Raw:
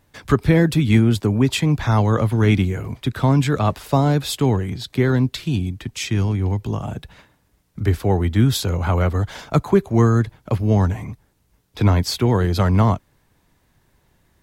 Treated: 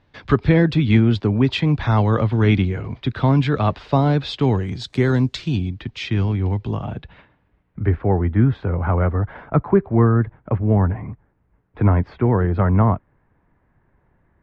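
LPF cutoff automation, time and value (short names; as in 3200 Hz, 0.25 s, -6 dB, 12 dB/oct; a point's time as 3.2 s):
LPF 24 dB/oct
4.35 s 4300 Hz
5.05 s 9400 Hz
5.79 s 4200 Hz
6.74 s 4200 Hz
8.07 s 1900 Hz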